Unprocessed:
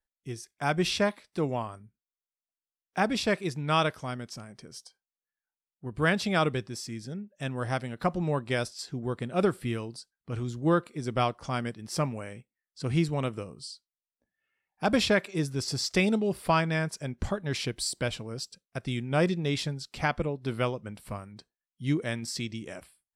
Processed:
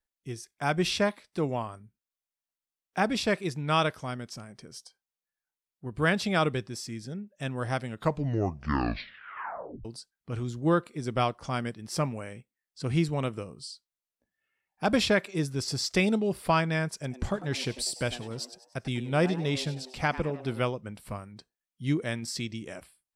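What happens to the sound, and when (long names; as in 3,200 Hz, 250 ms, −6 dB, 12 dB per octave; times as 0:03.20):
0:07.84: tape stop 2.01 s
0:16.94–0:20.60: echo with shifted repeats 98 ms, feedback 46%, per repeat +120 Hz, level −15 dB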